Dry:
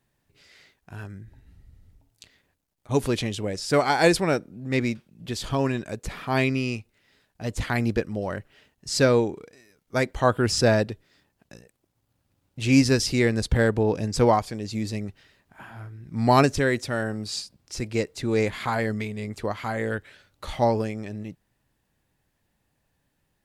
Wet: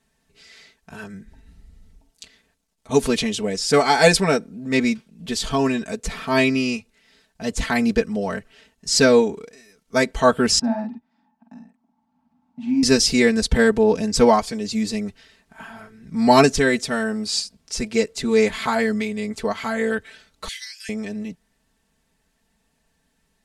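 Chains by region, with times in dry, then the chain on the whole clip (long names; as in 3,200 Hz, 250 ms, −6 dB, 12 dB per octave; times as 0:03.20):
0:10.59–0:12.83: pair of resonant band-passes 450 Hz, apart 1.8 octaves + double-tracking delay 48 ms −3.5 dB + multiband upward and downward compressor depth 40%
0:20.48–0:20.89: Chebyshev high-pass filter 1,600 Hz, order 6 + high-shelf EQ 6,400 Hz +7 dB
whole clip: low-pass filter 8,100 Hz 12 dB per octave; high-shelf EQ 6,200 Hz +10.5 dB; comb filter 4.5 ms, depth 91%; level +2 dB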